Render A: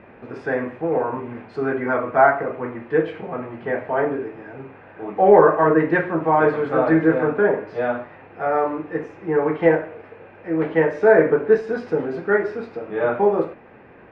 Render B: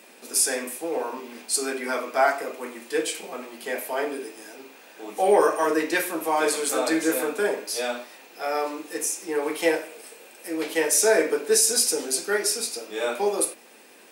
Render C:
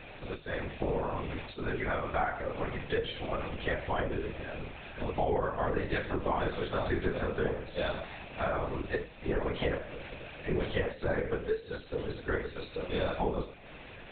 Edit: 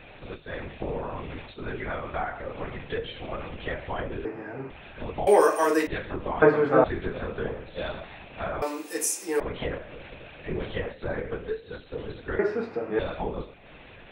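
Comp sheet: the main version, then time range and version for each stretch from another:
C
0:04.25–0:04.70: punch in from A
0:05.27–0:05.87: punch in from B
0:06.42–0:06.84: punch in from A
0:08.62–0:09.40: punch in from B
0:12.39–0:12.99: punch in from A

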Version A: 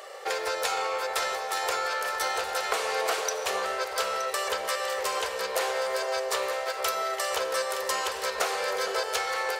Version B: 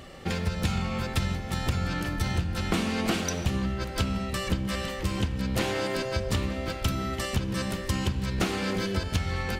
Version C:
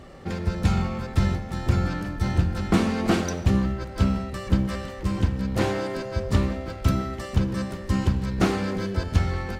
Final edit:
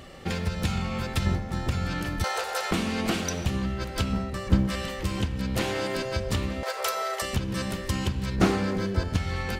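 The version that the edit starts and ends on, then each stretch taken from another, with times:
B
0:01.26–0:01.69: punch in from C
0:02.24–0:02.71: punch in from A
0:04.13–0:04.70: punch in from C
0:06.63–0:07.22: punch in from A
0:08.36–0:09.16: punch in from C

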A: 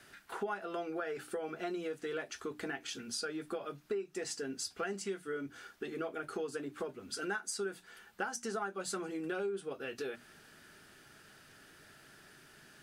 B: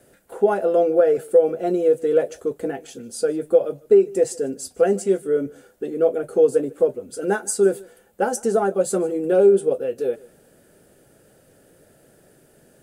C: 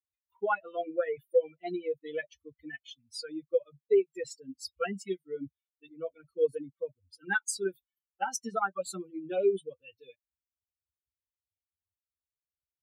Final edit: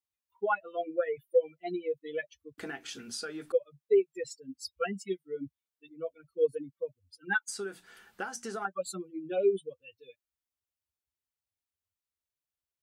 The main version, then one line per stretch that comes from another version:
C
0:02.58–0:03.52: punch in from A
0:07.48–0:08.65: punch in from A
not used: B

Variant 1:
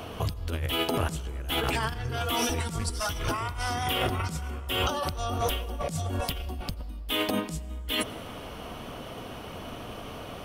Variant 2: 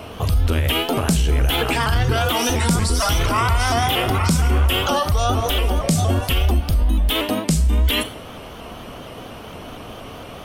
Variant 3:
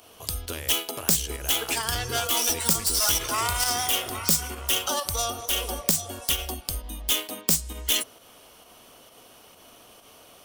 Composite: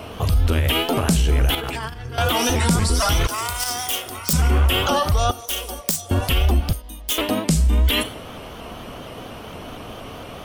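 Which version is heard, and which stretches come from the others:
2
0:01.55–0:02.18: punch in from 1
0:03.27–0:04.33: punch in from 3
0:05.31–0:06.11: punch in from 3
0:06.73–0:07.18: punch in from 3

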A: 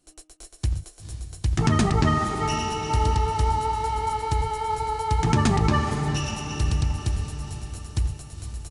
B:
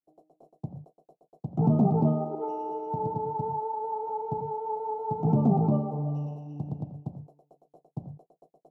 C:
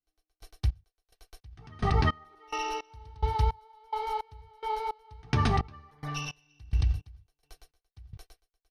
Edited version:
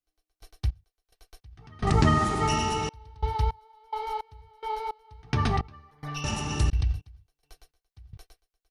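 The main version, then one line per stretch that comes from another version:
C
0:01.87–0:02.89: punch in from A
0:06.24–0:06.70: punch in from A
not used: B

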